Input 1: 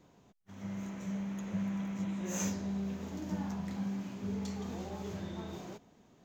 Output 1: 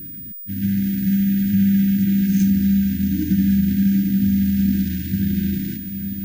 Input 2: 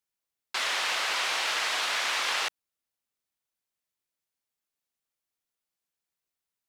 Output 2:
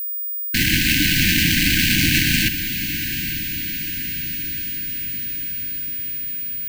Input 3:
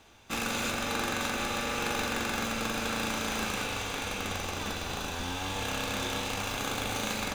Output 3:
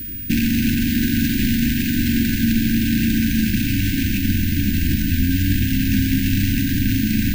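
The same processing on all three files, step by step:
median filter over 25 samples; bell 2300 Hz -2.5 dB 0.77 oct; in parallel at +2 dB: compressor, threshold -45 dBFS; on the sum: limiter -28 dBFS; whine 15000 Hz -48 dBFS; brick-wall FIR band-stop 330–1500 Hz; on a send: diffused feedback echo 0.882 s, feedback 60%, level -10.5 dB; on the sum: match loudness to -19 LUFS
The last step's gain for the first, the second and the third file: +16.5, +24.5, +20.5 dB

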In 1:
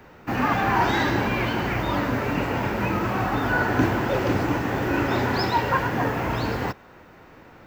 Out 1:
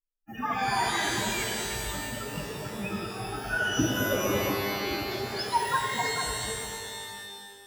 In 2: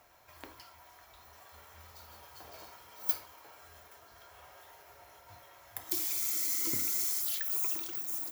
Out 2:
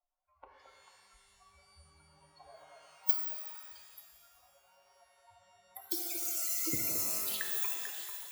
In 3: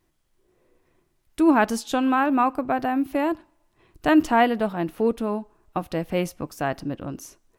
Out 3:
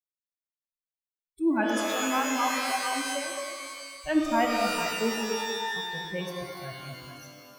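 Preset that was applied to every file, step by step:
per-bin expansion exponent 3; delay with a stepping band-pass 0.221 s, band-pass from 500 Hz, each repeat 1.4 oct, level -3 dB; shimmer reverb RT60 1.8 s, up +12 st, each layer -2 dB, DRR 3 dB; normalise peaks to -12 dBFS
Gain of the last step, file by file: -1.5, +4.5, -4.5 dB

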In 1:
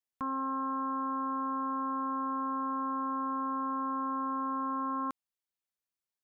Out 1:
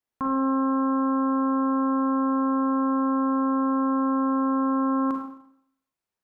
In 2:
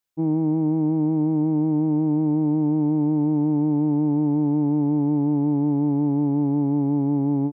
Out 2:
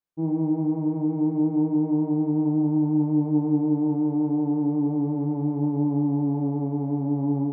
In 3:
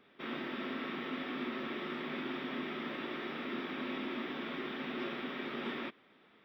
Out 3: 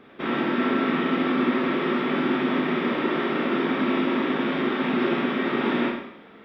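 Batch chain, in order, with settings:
high shelf 2300 Hz -11 dB; Schroeder reverb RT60 0.71 s, combs from 33 ms, DRR 1.5 dB; match loudness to -24 LUFS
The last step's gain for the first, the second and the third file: +8.5, -4.0, +15.0 dB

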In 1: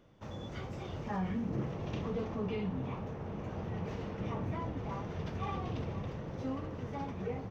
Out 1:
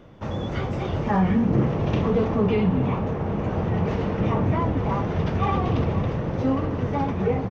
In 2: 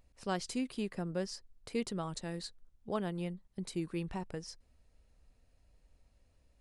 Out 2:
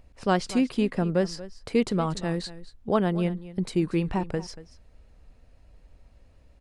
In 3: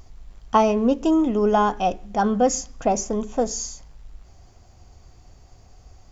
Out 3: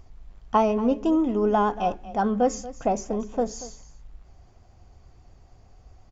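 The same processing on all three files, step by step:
high shelf 4700 Hz -11.5 dB; vibrato 8.5 Hz 30 cents; echo 0.234 s -16.5 dB; normalise peaks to -9 dBFS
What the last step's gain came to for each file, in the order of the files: +15.0, +12.5, -3.0 dB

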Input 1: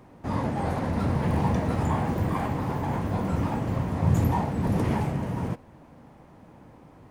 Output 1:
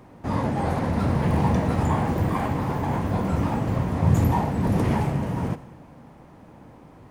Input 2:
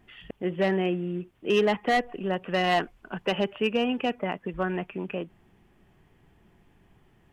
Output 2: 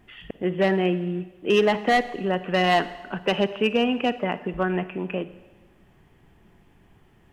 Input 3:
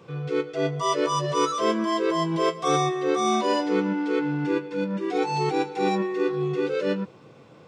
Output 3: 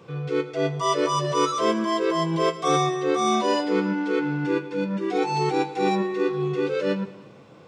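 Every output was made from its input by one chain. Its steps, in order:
Schroeder reverb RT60 1.2 s, DRR 14 dB; match loudness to -24 LUFS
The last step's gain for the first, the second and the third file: +3.0, +3.5, +1.0 dB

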